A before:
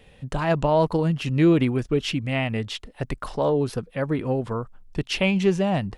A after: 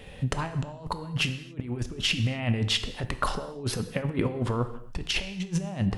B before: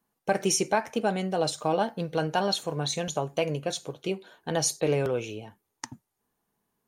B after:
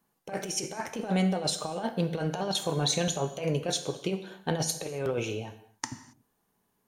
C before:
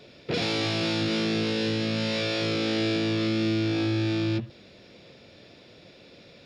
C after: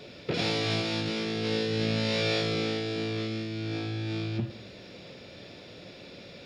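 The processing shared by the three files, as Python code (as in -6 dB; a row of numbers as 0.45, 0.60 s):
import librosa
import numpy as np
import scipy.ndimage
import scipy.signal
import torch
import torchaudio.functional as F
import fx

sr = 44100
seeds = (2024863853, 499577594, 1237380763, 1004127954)

y = fx.over_compress(x, sr, threshold_db=-29.0, ratio=-0.5)
y = fx.rev_gated(y, sr, seeds[0], gate_ms=300, shape='falling', drr_db=9.0)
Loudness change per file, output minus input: -6.0, -2.5, -3.5 LU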